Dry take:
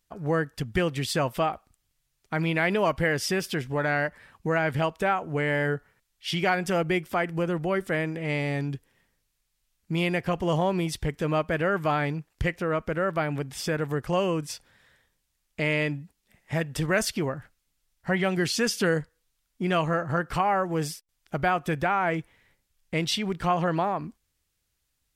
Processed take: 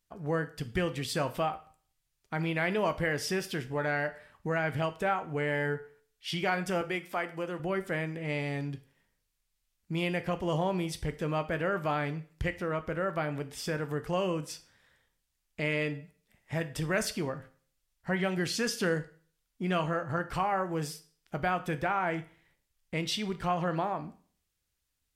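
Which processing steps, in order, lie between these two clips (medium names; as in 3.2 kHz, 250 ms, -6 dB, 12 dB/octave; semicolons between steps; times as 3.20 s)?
6.81–7.60 s: high-pass 390 Hz 6 dB/octave; reverberation RT60 0.45 s, pre-delay 12 ms, DRR 10 dB; trim -5.5 dB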